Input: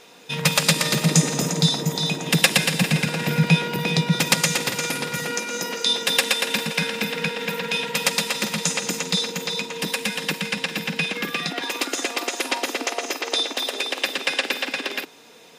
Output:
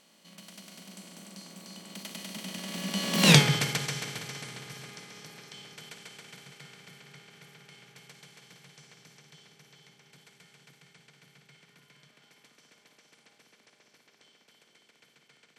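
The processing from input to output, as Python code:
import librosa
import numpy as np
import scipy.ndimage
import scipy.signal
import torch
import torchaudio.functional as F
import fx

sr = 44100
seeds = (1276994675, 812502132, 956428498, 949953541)

y = fx.bin_compress(x, sr, power=0.4)
y = fx.doppler_pass(y, sr, speed_mps=55, closest_m=3.2, pass_at_s=3.32)
y = y * 10.0 ** (-1.0 / 20.0)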